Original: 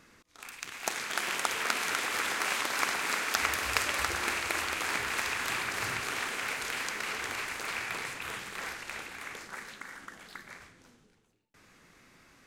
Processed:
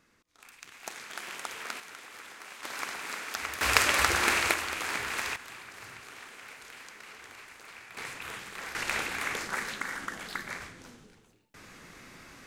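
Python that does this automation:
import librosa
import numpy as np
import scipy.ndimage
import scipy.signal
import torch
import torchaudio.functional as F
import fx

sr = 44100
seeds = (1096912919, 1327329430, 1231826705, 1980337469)

y = fx.gain(x, sr, db=fx.steps((0.0, -8.0), (1.8, -15.5), (2.63, -6.5), (3.61, 6.0), (4.54, -1.0), (5.36, -13.0), (7.97, -2.0), (8.75, 9.0)))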